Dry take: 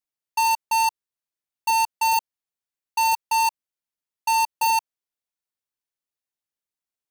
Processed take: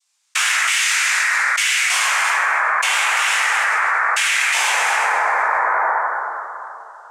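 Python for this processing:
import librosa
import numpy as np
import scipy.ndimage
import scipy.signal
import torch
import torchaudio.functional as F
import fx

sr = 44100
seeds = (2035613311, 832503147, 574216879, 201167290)

y = fx.doppler_pass(x, sr, speed_mps=23, closest_m=22.0, pass_at_s=2.92)
y = fx.low_shelf_res(y, sr, hz=500.0, db=-12.0, q=3.0)
y = fx.comb_fb(y, sr, f0_hz=150.0, decay_s=1.0, harmonics='all', damping=0.0, mix_pct=70)
y = fx.noise_vocoder(y, sr, seeds[0], bands=4)
y = fx.filter_lfo_highpass(y, sr, shape='saw_up', hz=1.1, low_hz=770.0, high_hz=2500.0, q=1.6)
y = np.diff(y, prepend=0.0)
y = y + 10.0 ** (-14.0 / 20.0) * np.pad(y, (int(235 * sr / 1000.0), 0))[:len(y)]
y = fx.rev_plate(y, sr, seeds[1], rt60_s=3.0, hf_ratio=0.25, predelay_ms=0, drr_db=-7.5)
y = fx.env_flatten(y, sr, amount_pct=100)
y = y * 10.0 ** (7.0 / 20.0)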